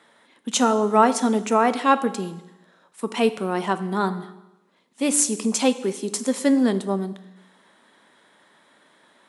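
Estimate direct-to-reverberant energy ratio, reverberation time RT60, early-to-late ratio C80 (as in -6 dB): 11.5 dB, 0.95 s, 16.0 dB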